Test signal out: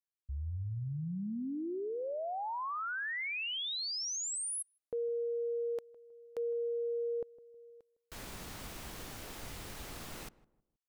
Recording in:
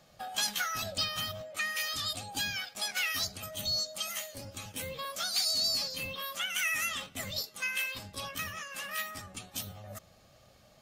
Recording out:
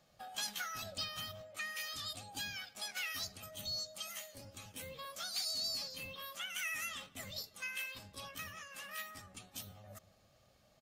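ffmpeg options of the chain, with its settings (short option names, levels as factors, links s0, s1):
-filter_complex "[0:a]asplit=2[s0][s1];[s1]adelay=158,lowpass=f=960:p=1,volume=0.126,asplit=2[s2][s3];[s3]adelay=158,lowpass=f=960:p=1,volume=0.36,asplit=2[s4][s5];[s5]adelay=158,lowpass=f=960:p=1,volume=0.36[s6];[s0][s2][s4][s6]amix=inputs=4:normalize=0,volume=0.376"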